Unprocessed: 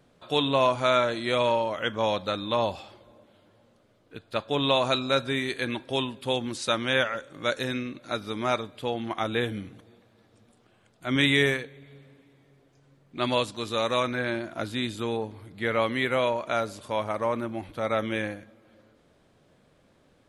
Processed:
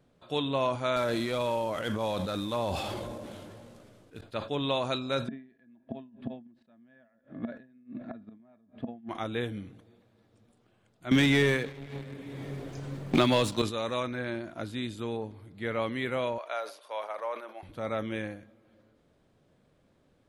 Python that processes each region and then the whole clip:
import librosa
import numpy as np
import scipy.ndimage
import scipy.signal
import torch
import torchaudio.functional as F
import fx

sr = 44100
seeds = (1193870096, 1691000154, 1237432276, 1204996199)

y = fx.chain(x, sr, fx.cvsd(bps=64000),
    fx.sustainer(db_per_s=21.0), at=(0.96, 4.21))
y = fx.chain(y, sr, fx.gate_flip(shuts_db=-23.0, range_db=-35),
    fx.air_absorb(metres=490.0),
    fx.small_body(hz=(230.0, 660.0, 1700.0), ring_ms=60, db=17), at=(5.28, 9.09))
y = fx.chain(y, sr, fx.leveller(passes=2),
    fx.band_squash(depth_pct=100), at=(11.11, 13.62))
y = fx.chain(y, sr, fx.highpass(hz=520.0, slope=24),
    fx.peak_eq(hz=7500.0, db=-13.0, octaves=0.33), at=(16.38, 17.63))
y = fx.low_shelf(y, sr, hz=500.0, db=5.0)
y = fx.sustainer(y, sr, db_per_s=130.0)
y = F.gain(torch.from_numpy(y), -8.0).numpy()